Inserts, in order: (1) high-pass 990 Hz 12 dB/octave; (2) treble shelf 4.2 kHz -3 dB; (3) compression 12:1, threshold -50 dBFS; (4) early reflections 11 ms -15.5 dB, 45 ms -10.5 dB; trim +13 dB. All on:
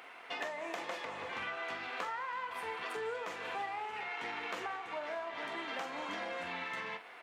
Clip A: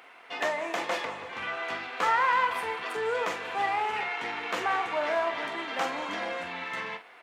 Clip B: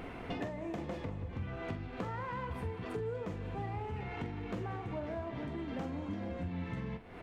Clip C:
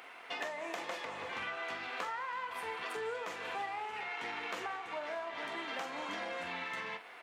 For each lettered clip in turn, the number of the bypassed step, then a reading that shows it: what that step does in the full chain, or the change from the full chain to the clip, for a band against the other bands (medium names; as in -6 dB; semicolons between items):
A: 3, mean gain reduction 7.5 dB; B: 1, 125 Hz band +28.0 dB; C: 2, 8 kHz band +2.0 dB